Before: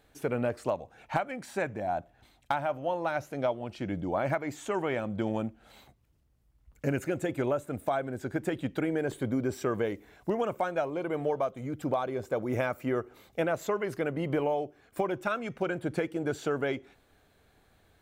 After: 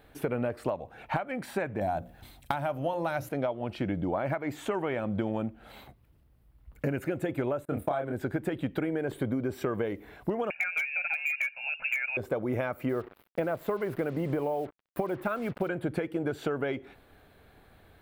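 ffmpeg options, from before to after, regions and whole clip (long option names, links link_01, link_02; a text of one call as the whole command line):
ffmpeg -i in.wav -filter_complex "[0:a]asettb=1/sr,asplit=3[link_01][link_02][link_03];[link_01]atrim=end=1.814[link_04];[link_02]atrim=start=1.81:end=3.29,asetpts=PTS-STARTPTS,afade=type=in:duration=0.004:curve=qsin,afade=type=out:start_time=1.476:duration=0.004:curve=qsin,bass=frequency=250:gain=6,treble=frequency=4000:gain=12,bandreject=frequency=60:width_type=h:width=6,bandreject=frequency=120:width_type=h:width=6,bandreject=frequency=180:width_type=h:width=6,bandreject=frequency=240:width_type=h:width=6,bandreject=frequency=300:width_type=h:width=6,bandreject=frequency=360:width_type=h:width=6,bandreject=frequency=420:width_type=h:width=6,bandreject=frequency=480:width_type=h:width=6,bandreject=frequency=540:width_type=h:width=6[link_05];[link_03]atrim=start=3.286[link_06];[link_04][link_05]acrossfade=duration=0.004:curve1=hsin:curve2=qsin[link_07];[link_07][link_06]acrossfade=duration=0.004:curve1=qsin:curve2=hsin,asettb=1/sr,asplit=3[link_08][link_09][link_10];[link_08]atrim=end=7.654[link_11];[link_09]atrim=start=7.65:end=8.12,asetpts=PTS-STARTPTS,afade=type=in:duration=0.004:curve=qsin,afade=type=out:start_time=0.466:duration=0.004:curve=qsin,agate=range=-26dB:threshold=-50dB:ratio=16:release=100:detection=peak,bandreject=frequency=2100:width=22,asplit=2[link_12][link_13];[link_13]adelay=28,volume=-3.5dB[link_14];[link_12][link_14]amix=inputs=2:normalize=0,atrim=end_sample=20727[link_15];[link_10]atrim=start=8.116[link_16];[link_11][link_15]acrossfade=duration=0.004:curve1=hsin:curve2=qsin[link_17];[link_17][link_16]acrossfade=duration=0.004:curve1=qsin:curve2=hsin,asettb=1/sr,asplit=3[link_18][link_19][link_20];[link_18]atrim=end=10.504[link_21];[link_19]atrim=start=10.5:end=12.17,asetpts=PTS-STARTPTS,afade=type=in:duration=0.004:curve=qsin,afade=type=out:start_time=1.666:duration=0.004:curve=qsin,lowpass=frequency=2500:width_type=q:width=0.5098,lowpass=frequency=2500:width_type=q:width=0.6013,lowpass=frequency=2500:width_type=q:width=0.9,lowpass=frequency=2500:width_type=q:width=2.563,afreqshift=-2900,aecho=1:1:1.3:0.59,atrim=end_sample=73647,aeval=exprs='0.106*(abs(mod(val(0)/0.106+3,4)-2)-1)':channel_layout=same[link_22];[link_20]atrim=start=12.166[link_23];[link_21][link_22]acrossfade=duration=0.004:curve1=hsin:curve2=qsin[link_24];[link_24][link_23]acrossfade=duration=0.004:curve1=qsin:curve2=hsin,asettb=1/sr,asplit=3[link_25][link_26][link_27];[link_25]atrim=end=12.894[link_28];[link_26]atrim=start=12.89:end=15.69,asetpts=PTS-STARTPTS,afade=type=in:duration=0.004:curve=qsin,afade=type=out:start_time=2.796:duration=0.004:curve=qsin,equalizer=frequency=5400:width=0.6:gain=-11,acrusher=bits=7:mix=0:aa=0.5[link_29];[link_27]atrim=start=15.686[link_30];[link_28][link_29]acrossfade=duration=0.004:curve1=hsin:curve2=qsin[link_31];[link_31][link_30]acrossfade=duration=0.004:curve1=qsin:curve2=hsin,acompressor=threshold=-34dB:ratio=6,equalizer=frequency=6600:width=1.2:gain=-12,volume=7dB" out.wav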